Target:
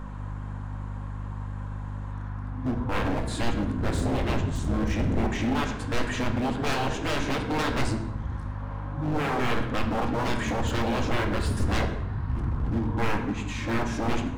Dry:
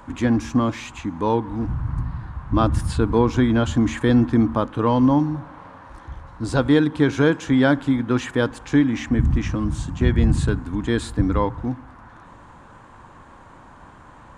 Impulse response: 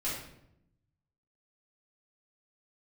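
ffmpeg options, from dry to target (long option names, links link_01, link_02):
-filter_complex "[0:a]areverse,aeval=exprs='val(0)+0.0224*(sin(2*PI*50*n/s)+sin(2*PI*2*50*n/s)/2+sin(2*PI*3*50*n/s)/3+sin(2*PI*4*50*n/s)/4+sin(2*PI*5*50*n/s)/5)':channel_layout=same,aeval=exprs='0.1*(abs(mod(val(0)/0.1+3,4)-2)-1)':channel_layout=same,aeval=exprs='0.1*(cos(1*acos(clip(val(0)/0.1,-1,1)))-cos(1*PI/2))+0.00282*(cos(5*acos(clip(val(0)/0.1,-1,1)))-cos(5*PI/2))':channel_layout=same,asplit=2[link_01][link_02];[1:a]atrim=start_sample=2205,asetrate=33516,aresample=44100,highshelf=frequency=8500:gain=-10.5[link_03];[link_02][link_03]afir=irnorm=-1:irlink=0,volume=-8dB[link_04];[link_01][link_04]amix=inputs=2:normalize=0,volume=-5dB"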